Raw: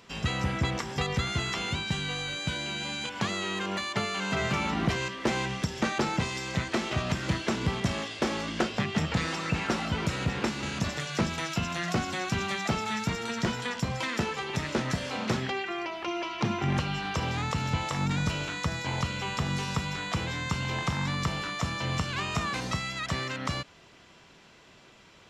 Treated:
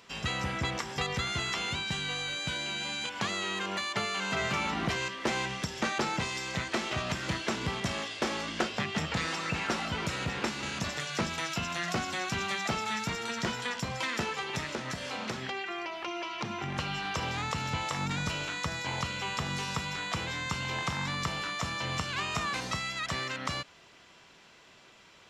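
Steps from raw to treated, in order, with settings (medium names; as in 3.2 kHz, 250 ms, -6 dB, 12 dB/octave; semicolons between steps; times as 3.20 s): bass shelf 420 Hz -7 dB; 14.61–16.79 s: compression, threshold -32 dBFS, peak gain reduction 6 dB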